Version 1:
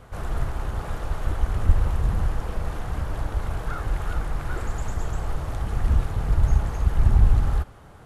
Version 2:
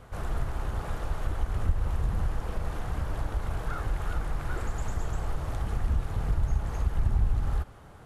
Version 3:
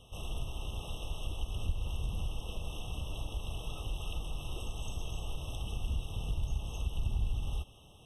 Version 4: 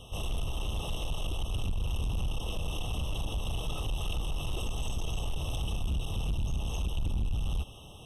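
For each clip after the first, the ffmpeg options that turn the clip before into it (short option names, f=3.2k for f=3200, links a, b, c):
-af "acompressor=threshold=-22dB:ratio=2,volume=-2.5dB"
-af "highshelf=f=1.9k:t=q:w=3:g=10,afftfilt=real='re*eq(mod(floor(b*sr/1024/1300),2),0)':imag='im*eq(mod(floor(b*sr/1024/1300),2),0)':win_size=1024:overlap=0.75,volume=-7.5dB"
-af "asoftclip=type=tanh:threshold=-34.5dB,volume=8.5dB"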